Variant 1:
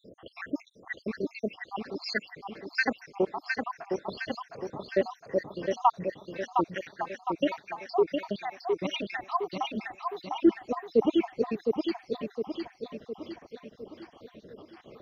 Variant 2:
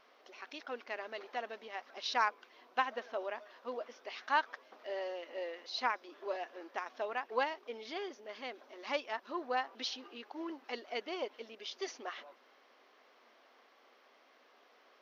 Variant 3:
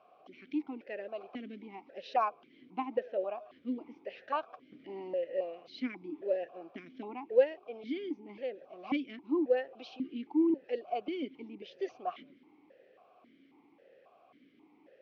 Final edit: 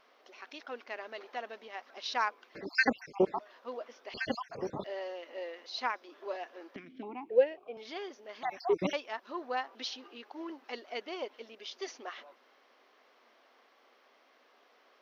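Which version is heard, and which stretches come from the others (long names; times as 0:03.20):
2
0:02.55–0:03.39: punch in from 1
0:04.14–0:04.84: punch in from 1
0:06.76–0:07.77: punch in from 3
0:08.43–0:08.93: punch in from 1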